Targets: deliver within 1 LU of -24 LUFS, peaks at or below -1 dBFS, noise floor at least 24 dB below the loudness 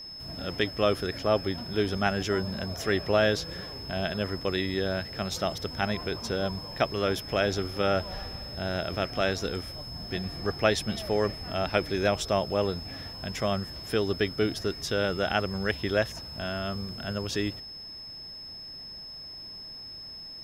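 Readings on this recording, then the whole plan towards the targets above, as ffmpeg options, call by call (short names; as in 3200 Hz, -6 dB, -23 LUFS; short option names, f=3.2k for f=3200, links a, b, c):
steady tone 5200 Hz; tone level -40 dBFS; loudness -30.0 LUFS; peak -8.0 dBFS; loudness target -24.0 LUFS
-> -af "bandreject=f=5.2k:w=30"
-af "volume=6dB"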